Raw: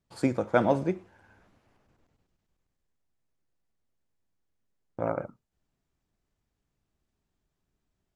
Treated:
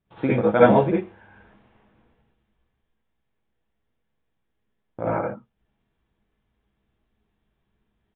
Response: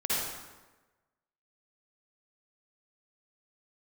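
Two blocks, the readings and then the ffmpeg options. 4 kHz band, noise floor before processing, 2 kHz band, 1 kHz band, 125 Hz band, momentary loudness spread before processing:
can't be measured, −82 dBFS, +7.5 dB, +8.0 dB, +8.0 dB, 16 LU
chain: -filter_complex "[1:a]atrim=start_sample=2205,atrim=end_sample=4410[link_01];[0:a][link_01]afir=irnorm=-1:irlink=0,aresample=8000,aresample=44100,volume=2dB"

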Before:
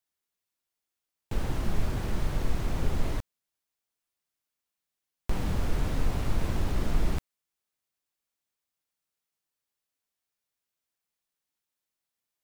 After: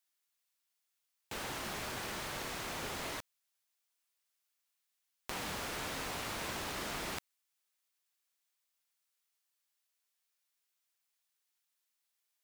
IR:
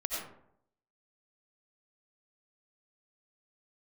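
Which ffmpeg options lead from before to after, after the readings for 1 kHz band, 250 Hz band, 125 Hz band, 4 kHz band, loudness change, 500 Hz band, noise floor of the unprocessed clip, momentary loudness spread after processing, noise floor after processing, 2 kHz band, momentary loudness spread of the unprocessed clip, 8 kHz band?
−1.0 dB, −11.5 dB, −18.5 dB, +3.5 dB, −6.5 dB, −5.5 dB, below −85 dBFS, 5 LU, −84 dBFS, +2.0 dB, 6 LU, +4.0 dB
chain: -af "highpass=frequency=1400:poles=1,volume=4dB"

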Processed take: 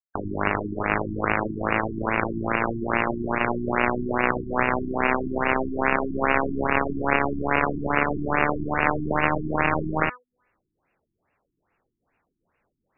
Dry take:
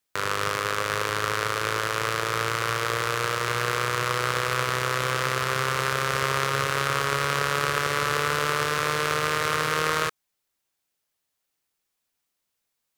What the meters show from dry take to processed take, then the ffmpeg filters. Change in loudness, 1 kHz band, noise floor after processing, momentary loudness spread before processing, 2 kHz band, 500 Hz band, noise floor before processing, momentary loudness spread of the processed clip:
+0.5 dB, +1.0 dB, −80 dBFS, 2 LU, 0.0 dB, +2.5 dB, −80 dBFS, 2 LU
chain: -af "bandreject=frequency=248.1:width_type=h:width=4,bandreject=frequency=496.2:width_type=h:width=4,bandreject=frequency=744.3:width_type=h:width=4,bandreject=frequency=992.4:width_type=h:width=4,bandreject=frequency=1240.5:width_type=h:width=4,bandreject=frequency=1488.6:width_type=h:width=4,bandreject=frequency=1736.7:width_type=h:width=4,bandreject=frequency=1984.8:width_type=h:width=4,bandreject=frequency=2232.9:width_type=h:width=4,bandreject=frequency=2481:width_type=h:width=4,bandreject=frequency=2729.1:width_type=h:width=4,bandreject=frequency=2977.2:width_type=h:width=4,bandreject=frequency=3225.3:width_type=h:width=4,bandreject=frequency=3473.4:width_type=h:width=4,bandreject=frequency=3721.5:width_type=h:width=4,bandreject=frequency=3969.6:width_type=h:width=4,bandreject=frequency=4217.7:width_type=h:width=4,bandreject=frequency=4465.8:width_type=h:width=4,bandreject=frequency=4713.9:width_type=h:width=4,bandreject=frequency=4962:width_type=h:width=4,bandreject=frequency=5210.1:width_type=h:width=4,bandreject=frequency=5458.2:width_type=h:width=4,bandreject=frequency=5706.3:width_type=h:width=4,bandreject=frequency=5954.4:width_type=h:width=4,bandreject=frequency=6202.5:width_type=h:width=4,bandreject=frequency=6450.6:width_type=h:width=4,bandreject=frequency=6698.7:width_type=h:width=4,bandreject=frequency=6946.8:width_type=h:width=4,bandreject=frequency=7194.9:width_type=h:width=4,bandreject=frequency=7443:width_type=h:width=4,bandreject=frequency=7691.1:width_type=h:width=4,bandreject=frequency=7939.2:width_type=h:width=4,bandreject=frequency=8187.3:width_type=h:width=4,bandreject=frequency=8435.4:width_type=h:width=4,bandreject=frequency=8683.5:width_type=h:width=4,bandreject=frequency=8931.6:width_type=h:width=4,acontrast=80,highshelf=frequency=2300:gain=-4,afftdn=noise_reduction=31:noise_floor=-33,areverse,acompressor=mode=upward:threshold=-32dB:ratio=2.5,areverse,aeval=exprs='0.75*(cos(1*acos(clip(val(0)/0.75,-1,1)))-cos(1*PI/2))+0.00944*(cos(2*acos(clip(val(0)/0.75,-1,1)))-cos(2*PI/2))+0.0211*(cos(3*acos(clip(val(0)/0.75,-1,1)))-cos(3*PI/2))+0.168*(cos(7*acos(clip(val(0)/0.75,-1,1)))-cos(7*PI/2))':channel_layout=same,afftfilt=real='re*lt(b*sr/1024,360*pow(2900/360,0.5+0.5*sin(2*PI*2.4*pts/sr)))':imag='im*lt(b*sr/1024,360*pow(2900/360,0.5+0.5*sin(2*PI*2.4*pts/sr)))':win_size=1024:overlap=0.75,volume=3dB"

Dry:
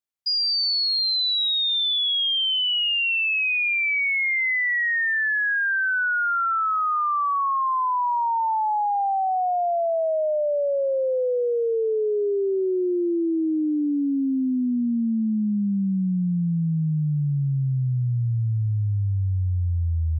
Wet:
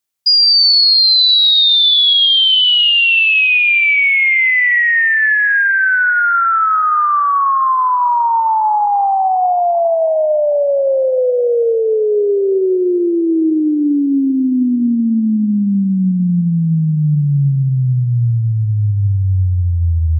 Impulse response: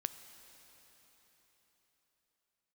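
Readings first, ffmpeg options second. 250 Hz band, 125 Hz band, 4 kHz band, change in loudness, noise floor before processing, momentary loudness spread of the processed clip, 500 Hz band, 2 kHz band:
+9.0 dB, +9.0 dB, +12.5 dB, +10.5 dB, −23 dBFS, 8 LU, +9.0 dB, +10.5 dB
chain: -filter_complex "[0:a]asplit=2[link_01][link_02];[1:a]atrim=start_sample=2205,highshelf=frequency=2900:gain=9.5[link_03];[link_02][link_03]afir=irnorm=-1:irlink=0,volume=1dB[link_04];[link_01][link_04]amix=inputs=2:normalize=0,volume=3dB"

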